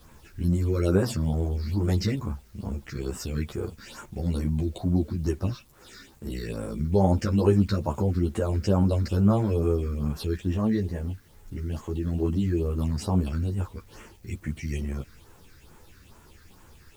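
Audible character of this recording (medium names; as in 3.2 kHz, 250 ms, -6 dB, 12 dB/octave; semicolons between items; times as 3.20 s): phasing stages 6, 2.3 Hz, lowest notch 760–4500 Hz; a quantiser's noise floor 10-bit, dither none; a shimmering, thickened sound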